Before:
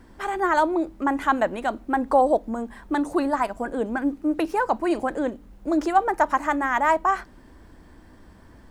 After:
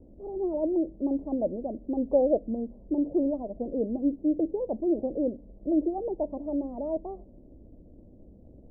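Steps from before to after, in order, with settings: level-controlled noise filter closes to 410 Hz, open at -21 dBFS; crackle 500 per s -31 dBFS; elliptic low-pass 590 Hz, stop band 60 dB; trim -1.5 dB

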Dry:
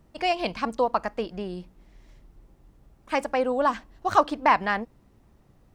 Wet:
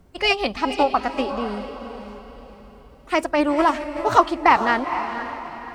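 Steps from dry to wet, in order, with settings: echo that smears into a reverb 470 ms, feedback 42%, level -9 dB; formant-preserving pitch shift +2.5 st; trim +5 dB

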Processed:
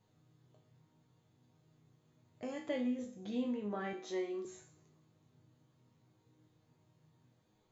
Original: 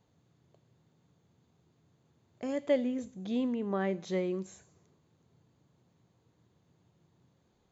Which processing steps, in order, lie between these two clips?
chord resonator G#2 minor, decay 0.42 s; in parallel at -3 dB: compression, threshold -57 dBFS, peak gain reduction 15 dB; 3.93–4.45 s: on the sum: steep high-pass 220 Hz 36 dB/octave; trim +8.5 dB

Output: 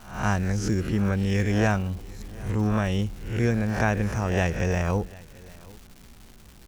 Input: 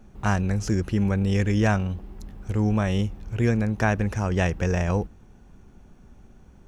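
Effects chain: reverse spectral sustain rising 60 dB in 0.52 s; delay 742 ms -22.5 dB; crackle 450 per s -37 dBFS; trim -2 dB

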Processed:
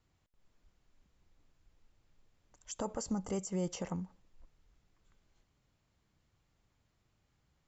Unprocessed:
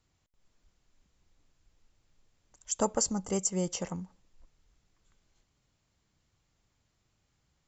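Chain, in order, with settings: peak limiter -26 dBFS, peak gain reduction 11.5 dB; treble shelf 4.8 kHz -9.5 dB

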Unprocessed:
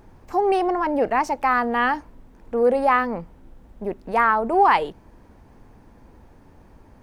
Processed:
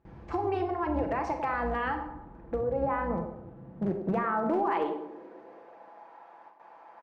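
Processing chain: octave divider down 2 oct, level -4 dB; low-pass 3.3 kHz 12 dB/octave, from 1.94 s 1.5 kHz, from 4.15 s 2.6 kHz; gate with hold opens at -41 dBFS; comb 6 ms, depth 47%; peak limiter -15 dBFS, peak gain reduction 10 dB; compression 5:1, threshold -29 dBFS, peak gain reduction 10 dB; high-pass sweep 64 Hz -> 820 Hz, 2.88–6.11 s; overload inside the chain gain 22.5 dB; feedback echo behind a band-pass 99 ms, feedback 48%, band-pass 500 Hz, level -7 dB; Schroeder reverb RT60 0.54 s, combs from 29 ms, DRR 7 dB

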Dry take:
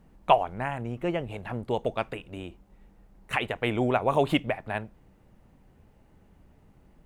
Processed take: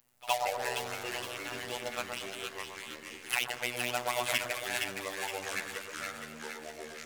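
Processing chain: robot voice 122 Hz; in parallel at -12 dB: fuzz box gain 29 dB, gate -35 dBFS; on the sum: pre-emphasis filter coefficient 0.97; pre-echo 67 ms -20.5 dB; ever faster or slower copies 89 ms, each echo -4 st, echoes 2, each echo -6 dB; on a send: two-band feedback delay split 1.3 kHz, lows 121 ms, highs 466 ms, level -4 dB; on the sum: trim +7 dB

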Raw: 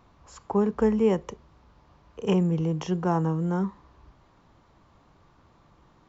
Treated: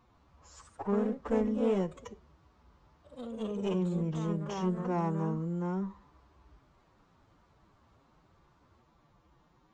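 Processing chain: single-diode clipper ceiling -22.5 dBFS; time stretch by phase-locked vocoder 1.6×; ever faster or slower copies 142 ms, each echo +2 st, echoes 2, each echo -6 dB; trim -6.5 dB

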